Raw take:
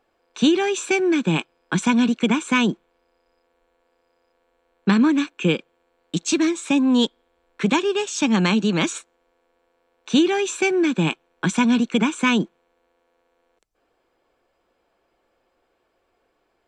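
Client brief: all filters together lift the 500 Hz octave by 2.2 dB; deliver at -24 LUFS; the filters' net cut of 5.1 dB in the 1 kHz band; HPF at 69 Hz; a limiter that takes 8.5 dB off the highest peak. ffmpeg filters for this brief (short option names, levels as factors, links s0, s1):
-af "highpass=69,equalizer=f=500:t=o:g=4.5,equalizer=f=1000:t=o:g=-7.5,alimiter=limit=0.188:level=0:latency=1"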